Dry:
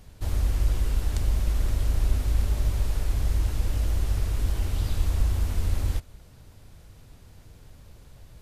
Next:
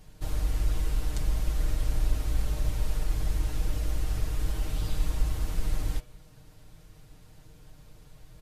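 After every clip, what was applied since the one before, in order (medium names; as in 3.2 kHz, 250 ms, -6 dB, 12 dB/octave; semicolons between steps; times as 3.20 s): comb 6.5 ms, depth 70%; de-hum 121.4 Hz, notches 31; trim -3.5 dB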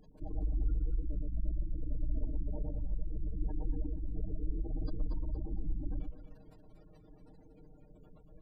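spectral gate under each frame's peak -25 dB strong; resonant low shelf 170 Hz -8.5 dB, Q 1.5; echo whose repeats swap between lows and highs 117 ms, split 1 kHz, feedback 52%, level -2 dB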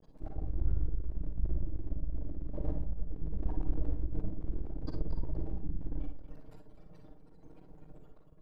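half-wave rectifier; random-step tremolo; reverberation RT60 0.25 s, pre-delay 40 ms, DRR 4 dB; trim +5.5 dB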